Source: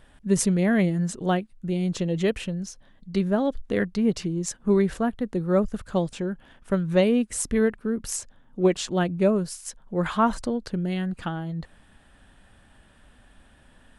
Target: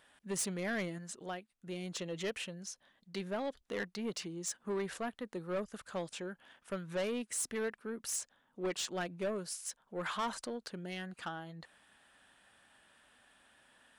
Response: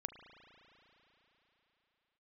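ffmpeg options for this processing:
-filter_complex "[0:a]asettb=1/sr,asplit=3[link_01][link_02][link_03];[link_01]atrim=end=0.984[link_04];[link_02]atrim=start=0.98:end=1.67,asetpts=PTS-STARTPTS,afade=type=in:duration=0.004:curve=qsin,afade=type=out:start_time=0.686:duration=0.004:curve=qsin,acompressor=threshold=-38dB:ratio=1.5[link_05];[link_03]atrim=start=1.666[link_06];[link_04][link_05]acrossfade=duration=0.004:curve1=hsin:curve2=qsin[link_07];[link_07][link_06]acrossfade=duration=0.004:curve1=qsin:curve2=hsin,highpass=frequency=930:poles=1,asoftclip=type=tanh:threshold=-27dB,volume=-3.5dB"

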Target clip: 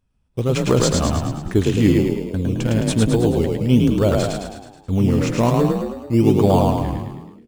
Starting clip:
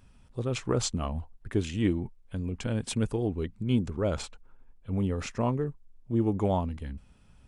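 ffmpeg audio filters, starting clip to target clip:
ffmpeg -i in.wav -filter_complex "[0:a]agate=range=-23dB:threshold=-45dB:ratio=16:detection=peak,asplit=2[link_01][link_02];[link_02]acrusher=samples=15:mix=1:aa=0.000001:lfo=1:lforange=9:lforate=1.2,volume=-8.5dB[link_03];[link_01][link_03]amix=inputs=2:normalize=0,asplit=8[link_04][link_05][link_06][link_07][link_08][link_09][link_10][link_11];[link_05]adelay=107,afreqshift=33,volume=-3dB[link_12];[link_06]adelay=214,afreqshift=66,volume=-8.4dB[link_13];[link_07]adelay=321,afreqshift=99,volume=-13.7dB[link_14];[link_08]adelay=428,afreqshift=132,volume=-19.1dB[link_15];[link_09]adelay=535,afreqshift=165,volume=-24.4dB[link_16];[link_10]adelay=642,afreqshift=198,volume=-29.8dB[link_17];[link_11]adelay=749,afreqshift=231,volume=-35.1dB[link_18];[link_04][link_12][link_13][link_14][link_15][link_16][link_17][link_18]amix=inputs=8:normalize=0,volume=7.5dB" out.wav

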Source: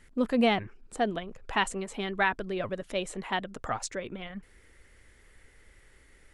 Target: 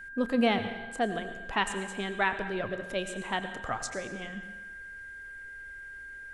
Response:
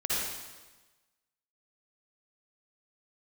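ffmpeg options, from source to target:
-filter_complex "[0:a]aeval=exprs='val(0)+0.00891*sin(2*PI*1600*n/s)':channel_layout=same,asplit=2[link_01][link_02];[1:a]atrim=start_sample=2205,adelay=30[link_03];[link_02][link_03]afir=irnorm=-1:irlink=0,volume=-17dB[link_04];[link_01][link_04]amix=inputs=2:normalize=0,volume=-1.5dB"

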